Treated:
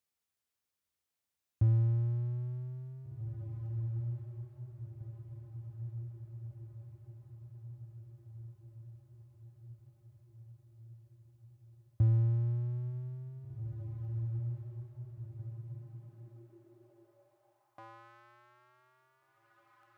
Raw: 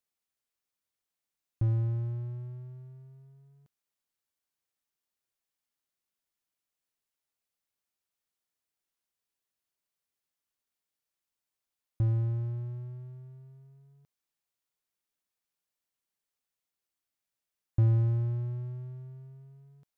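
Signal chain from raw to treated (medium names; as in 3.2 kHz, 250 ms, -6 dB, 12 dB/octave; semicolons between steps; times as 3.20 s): in parallel at -2 dB: compression, threshold -38 dBFS, peak gain reduction 16.5 dB; on the sum: echo that smears into a reverb 1953 ms, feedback 57%, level -7.5 dB; high-pass sweep 75 Hz -> 1.3 kHz, 15.22–18.12 s; trim -5 dB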